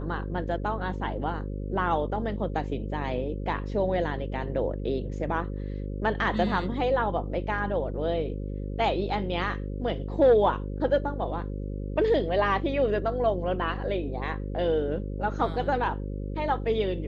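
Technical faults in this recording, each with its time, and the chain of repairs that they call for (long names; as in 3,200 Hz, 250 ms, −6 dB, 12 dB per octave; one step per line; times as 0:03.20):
mains buzz 50 Hz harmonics 11 −33 dBFS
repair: hum removal 50 Hz, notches 11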